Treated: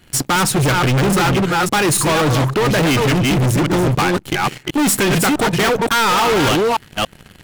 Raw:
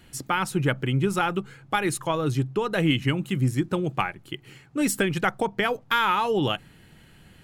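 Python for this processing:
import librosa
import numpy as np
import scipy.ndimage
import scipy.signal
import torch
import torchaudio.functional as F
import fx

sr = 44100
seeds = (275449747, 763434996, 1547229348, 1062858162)

y = fx.reverse_delay(x, sr, ms=282, wet_db=-6.0)
y = fx.leveller(y, sr, passes=3)
y = np.clip(y, -10.0 ** (-21.5 / 20.0), 10.0 ** (-21.5 / 20.0))
y = F.gain(torch.from_numpy(y), 8.0).numpy()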